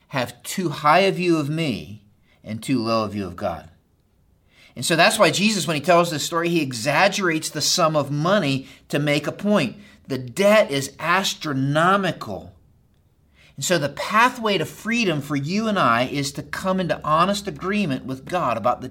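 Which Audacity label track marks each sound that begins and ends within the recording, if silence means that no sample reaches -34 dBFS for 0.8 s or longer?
4.770000	12.460000	sound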